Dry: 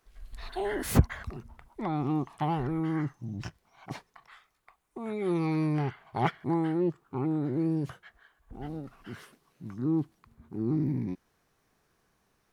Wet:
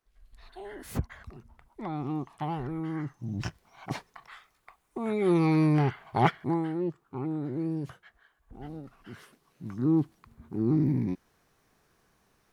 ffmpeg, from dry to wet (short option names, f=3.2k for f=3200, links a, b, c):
-af "volume=11.5dB,afade=t=in:st=0.88:d=1:silence=0.421697,afade=t=in:st=3.05:d=0.4:silence=0.375837,afade=t=out:st=6.18:d=0.49:silence=0.398107,afade=t=in:st=9.17:d=0.67:silence=0.473151"